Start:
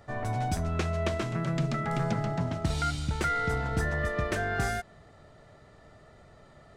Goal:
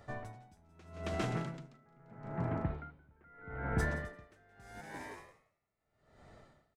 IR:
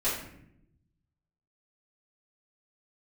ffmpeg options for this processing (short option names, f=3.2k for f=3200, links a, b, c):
-filter_complex "[0:a]asplit=3[a][b][c];[a]afade=t=out:st=1.77:d=0.02[d];[b]lowpass=f=2k:w=0.5412,lowpass=f=2k:w=1.3066,afade=t=in:st=1.77:d=0.02,afade=t=out:st=3.78:d=0.02[e];[c]afade=t=in:st=3.78:d=0.02[f];[d][e][f]amix=inputs=3:normalize=0,asplit=8[g][h][i][j][k][l][m][n];[h]adelay=172,afreqshift=100,volume=-11dB[o];[i]adelay=344,afreqshift=200,volume=-15.2dB[p];[j]adelay=516,afreqshift=300,volume=-19.3dB[q];[k]adelay=688,afreqshift=400,volume=-23.5dB[r];[l]adelay=860,afreqshift=500,volume=-27.6dB[s];[m]adelay=1032,afreqshift=600,volume=-31.8dB[t];[n]adelay=1204,afreqshift=700,volume=-35.9dB[u];[g][o][p][q][r][s][t][u]amix=inputs=8:normalize=0,aeval=exprs='val(0)*pow(10,-32*(0.5-0.5*cos(2*PI*0.79*n/s))/20)':c=same,volume=-3.5dB"